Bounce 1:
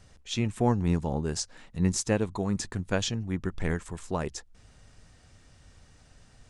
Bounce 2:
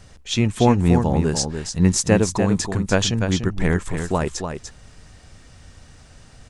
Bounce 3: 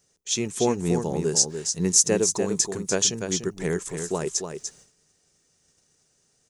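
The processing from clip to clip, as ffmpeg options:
-af "aecho=1:1:294:0.447,volume=2.82"
-af "aemphasis=mode=production:type=bsi,agate=range=0.2:threshold=0.00562:ratio=16:detection=peak,equalizer=f=160:t=o:w=0.67:g=9,equalizer=f=400:t=o:w=0.67:g=12,equalizer=f=6300:t=o:w=0.67:g=9,volume=0.316"

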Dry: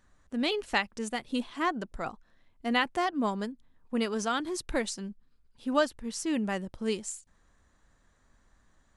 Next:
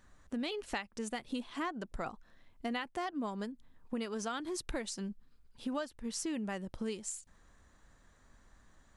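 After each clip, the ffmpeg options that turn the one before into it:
-af "acompressor=threshold=0.0126:ratio=5,volume=1.33"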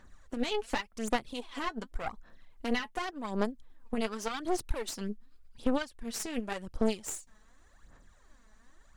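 -af "aphaser=in_gain=1:out_gain=1:delay=4.7:decay=0.62:speed=0.88:type=sinusoidal,aeval=exprs='0.141*(cos(1*acos(clip(val(0)/0.141,-1,1)))-cos(1*PI/2))+0.0501*(cos(4*acos(clip(val(0)/0.141,-1,1)))-cos(4*PI/2))':c=same,equalizer=f=100:t=o:w=2.5:g=-3.5"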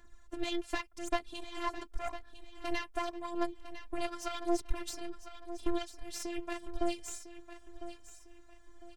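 -filter_complex "[0:a]acrossover=split=420|7500[s0][s1][s2];[s2]alimiter=level_in=3.98:limit=0.0631:level=0:latency=1:release=326,volume=0.251[s3];[s0][s1][s3]amix=inputs=3:normalize=0,afftfilt=real='hypot(re,im)*cos(PI*b)':imag='0':win_size=512:overlap=0.75,aecho=1:1:1003|2006|3009:0.237|0.0806|0.0274,volume=1.12"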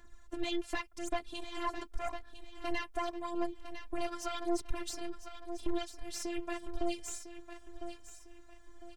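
-af "asoftclip=type=tanh:threshold=0.0708,volume=1.19"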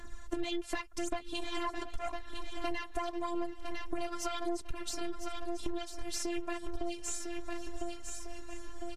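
-af "aecho=1:1:722|1444|2166|2888:0.0891|0.0508|0.029|0.0165,acompressor=threshold=0.00794:ratio=6,volume=3.55" -ar 32000 -c:a libvorbis -b:a 64k

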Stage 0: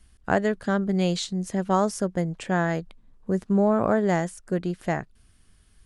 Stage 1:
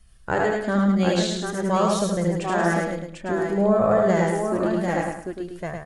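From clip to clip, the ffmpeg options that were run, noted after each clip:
-filter_complex "[0:a]asplit=2[s0][s1];[s1]aecho=0:1:71|77|746:0.501|0.668|0.596[s2];[s0][s2]amix=inputs=2:normalize=0,flanger=delay=1.6:depth=2.1:regen=-25:speed=0.51:shape=sinusoidal,asplit=2[s3][s4];[s4]aecho=0:1:106|212|318|424:0.562|0.152|0.041|0.0111[s5];[s3][s5]amix=inputs=2:normalize=0,volume=1.41"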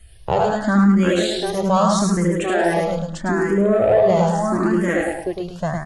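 -filter_complex "[0:a]asplit=2[s0][s1];[s1]acompressor=threshold=0.0398:ratio=6,volume=1.26[s2];[s0][s2]amix=inputs=2:normalize=0,asoftclip=type=tanh:threshold=0.398,asplit=2[s3][s4];[s4]afreqshift=0.79[s5];[s3][s5]amix=inputs=2:normalize=1,volume=1.68"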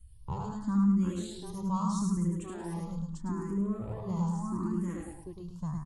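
-af "firequalizer=gain_entry='entry(130,0);entry(650,-29);entry(970,-4);entry(1600,-24);entry(4300,-14);entry(7600,-7)':delay=0.05:min_phase=1,volume=0.447"

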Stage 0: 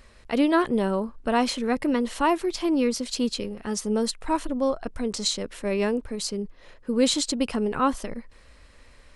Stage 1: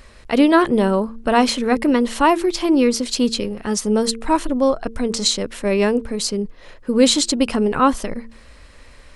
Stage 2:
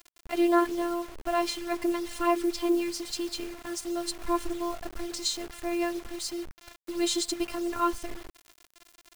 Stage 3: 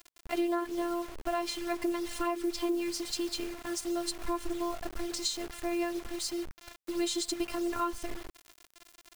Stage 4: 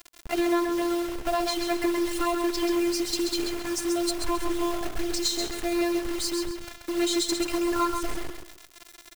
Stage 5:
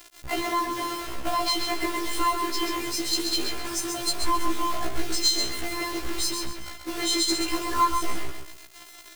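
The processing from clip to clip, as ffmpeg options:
-af "bandreject=f=113.9:t=h:w=4,bandreject=f=227.8:t=h:w=4,bandreject=f=341.7:t=h:w=4,bandreject=f=455.6:t=h:w=4,volume=2.37"
-af "afftfilt=real='hypot(re,im)*cos(PI*b)':imag='0':win_size=512:overlap=0.75,acrusher=bits=5:mix=0:aa=0.000001,volume=0.398"
-af "acompressor=threshold=0.0447:ratio=6"
-filter_complex "[0:a]asplit=2[s0][s1];[s1]aeval=exprs='(mod(26.6*val(0)+1,2)-1)/26.6':c=same,volume=0.335[s2];[s0][s2]amix=inputs=2:normalize=0,aecho=1:1:133|266|399|532:0.501|0.145|0.0421|0.0122,volume=1.68"
-af "afftfilt=real='re*1.73*eq(mod(b,3),0)':imag='im*1.73*eq(mod(b,3),0)':win_size=2048:overlap=0.75,volume=1.78"

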